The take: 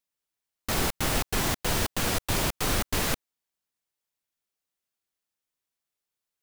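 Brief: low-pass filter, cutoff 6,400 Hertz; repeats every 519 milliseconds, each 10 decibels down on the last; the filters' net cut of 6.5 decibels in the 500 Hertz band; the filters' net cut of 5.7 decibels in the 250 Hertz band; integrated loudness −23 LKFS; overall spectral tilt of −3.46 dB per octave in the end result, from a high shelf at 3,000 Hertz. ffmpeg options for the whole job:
ffmpeg -i in.wav -af "lowpass=6400,equalizer=frequency=250:width_type=o:gain=-6,equalizer=frequency=500:width_type=o:gain=-7,highshelf=frequency=3000:gain=5.5,aecho=1:1:519|1038|1557|2076:0.316|0.101|0.0324|0.0104,volume=5.5dB" out.wav

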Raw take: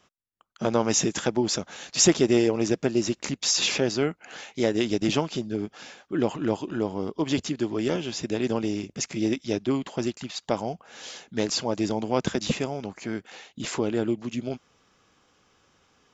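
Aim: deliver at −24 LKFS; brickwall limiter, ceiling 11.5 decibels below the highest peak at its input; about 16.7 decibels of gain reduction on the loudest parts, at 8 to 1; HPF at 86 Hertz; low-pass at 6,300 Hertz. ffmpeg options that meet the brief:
ffmpeg -i in.wav -af "highpass=86,lowpass=6300,acompressor=threshold=-31dB:ratio=8,volume=14.5dB,alimiter=limit=-12.5dB:level=0:latency=1" out.wav

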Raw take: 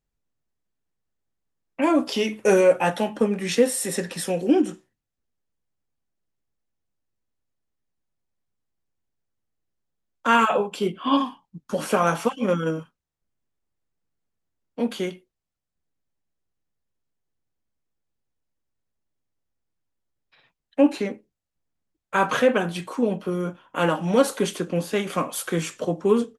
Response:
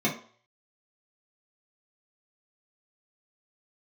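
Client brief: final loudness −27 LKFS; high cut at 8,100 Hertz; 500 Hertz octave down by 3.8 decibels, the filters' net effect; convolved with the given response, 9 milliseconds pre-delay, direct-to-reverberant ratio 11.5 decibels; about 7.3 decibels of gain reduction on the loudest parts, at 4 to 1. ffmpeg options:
-filter_complex "[0:a]lowpass=8100,equalizer=frequency=500:width_type=o:gain=-4.5,acompressor=threshold=-23dB:ratio=4,asplit=2[link_01][link_02];[1:a]atrim=start_sample=2205,adelay=9[link_03];[link_02][link_03]afir=irnorm=-1:irlink=0,volume=-23dB[link_04];[link_01][link_04]amix=inputs=2:normalize=0,volume=1.5dB"

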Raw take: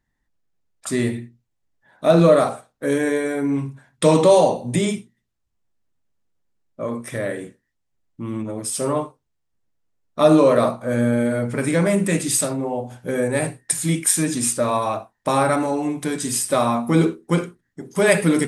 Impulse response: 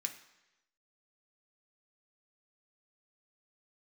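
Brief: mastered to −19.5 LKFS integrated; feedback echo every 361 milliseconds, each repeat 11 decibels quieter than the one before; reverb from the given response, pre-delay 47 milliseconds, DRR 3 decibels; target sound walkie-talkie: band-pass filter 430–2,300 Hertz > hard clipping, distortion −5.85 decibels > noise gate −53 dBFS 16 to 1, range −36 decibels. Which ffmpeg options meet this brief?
-filter_complex "[0:a]aecho=1:1:361|722|1083:0.282|0.0789|0.0221,asplit=2[link_01][link_02];[1:a]atrim=start_sample=2205,adelay=47[link_03];[link_02][link_03]afir=irnorm=-1:irlink=0,volume=-2.5dB[link_04];[link_01][link_04]amix=inputs=2:normalize=0,highpass=430,lowpass=2300,asoftclip=type=hard:threshold=-21dB,agate=range=-36dB:threshold=-53dB:ratio=16,volume=7.5dB"

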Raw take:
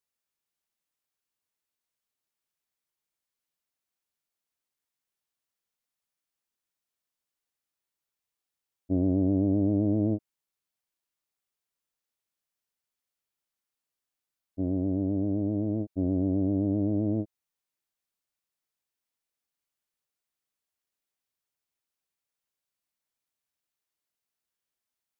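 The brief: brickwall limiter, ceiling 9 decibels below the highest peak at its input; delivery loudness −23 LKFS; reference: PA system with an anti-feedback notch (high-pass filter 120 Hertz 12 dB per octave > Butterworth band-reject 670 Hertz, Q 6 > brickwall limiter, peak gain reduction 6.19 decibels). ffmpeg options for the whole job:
ffmpeg -i in.wav -af "alimiter=level_in=0.5dB:limit=-24dB:level=0:latency=1,volume=-0.5dB,highpass=120,asuperstop=centerf=670:order=8:qfactor=6,volume=18.5dB,alimiter=limit=-14.5dB:level=0:latency=1" out.wav

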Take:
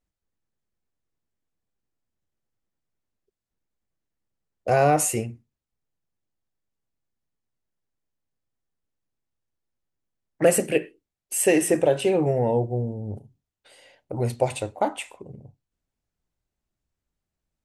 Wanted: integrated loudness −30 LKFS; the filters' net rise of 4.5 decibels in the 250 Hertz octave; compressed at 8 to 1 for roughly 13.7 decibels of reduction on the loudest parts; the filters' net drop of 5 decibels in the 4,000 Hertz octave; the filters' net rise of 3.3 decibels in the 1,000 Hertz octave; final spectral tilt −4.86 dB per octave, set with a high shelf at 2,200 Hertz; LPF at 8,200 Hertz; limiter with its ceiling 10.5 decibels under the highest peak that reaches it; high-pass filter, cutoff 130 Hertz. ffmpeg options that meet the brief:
ffmpeg -i in.wav -af "highpass=130,lowpass=8200,equalizer=frequency=250:width_type=o:gain=6.5,equalizer=frequency=1000:width_type=o:gain=5.5,highshelf=frequency=2200:gain=-4.5,equalizer=frequency=4000:width_type=o:gain=-3.5,acompressor=threshold=-26dB:ratio=8,volume=4dB,alimiter=limit=-18dB:level=0:latency=1" out.wav

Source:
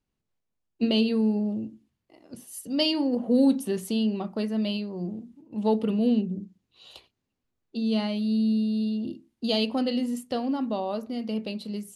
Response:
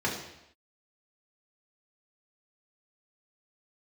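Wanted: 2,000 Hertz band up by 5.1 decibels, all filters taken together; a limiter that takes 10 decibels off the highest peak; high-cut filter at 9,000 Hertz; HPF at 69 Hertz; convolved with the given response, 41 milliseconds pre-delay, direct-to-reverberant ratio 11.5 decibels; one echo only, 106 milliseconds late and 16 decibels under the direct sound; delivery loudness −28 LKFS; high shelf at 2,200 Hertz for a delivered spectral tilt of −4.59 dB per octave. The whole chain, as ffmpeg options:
-filter_complex "[0:a]highpass=69,lowpass=9000,equalizer=frequency=2000:width_type=o:gain=4.5,highshelf=frequency=2200:gain=4,alimiter=limit=-18.5dB:level=0:latency=1,aecho=1:1:106:0.158,asplit=2[link_01][link_02];[1:a]atrim=start_sample=2205,adelay=41[link_03];[link_02][link_03]afir=irnorm=-1:irlink=0,volume=-21.5dB[link_04];[link_01][link_04]amix=inputs=2:normalize=0"

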